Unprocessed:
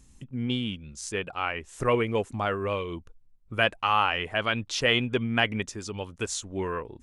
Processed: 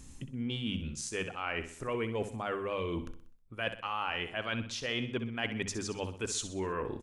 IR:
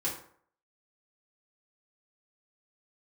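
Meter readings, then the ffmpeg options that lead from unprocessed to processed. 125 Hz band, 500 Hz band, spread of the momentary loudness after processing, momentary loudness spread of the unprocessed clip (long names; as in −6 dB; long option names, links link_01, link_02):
−6.5 dB, −7.0 dB, 3 LU, 12 LU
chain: -af "equalizer=frequency=260:width_type=o:width=0.34:gain=2.5,bandreject=frequency=50:width_type=h:width=6,bandreject=frequency=100:width_type=h:width=6,bandreject=frequency=150:width_type=h:width=6,bandreject=frequency=200:width_type=h:width=6,bandreject=frequency=250:width_type=h:width=6,areverse,acompressor=threshold=-39dB:ratio=6,areverse,aecho=1:1:63|126|189|252|315:0.282|0.127|0.0571|0.0257|0.0116,volume=6dB"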